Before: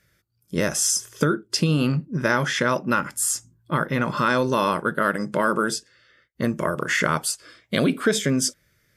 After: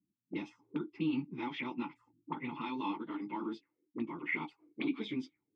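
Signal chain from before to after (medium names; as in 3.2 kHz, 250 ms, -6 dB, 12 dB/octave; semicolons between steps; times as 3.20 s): plain phase-vocoder stretch 0.62×; vowel filter u; touch-sensitive low-pass 220–3700 Hz up, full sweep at -37.5 dBFS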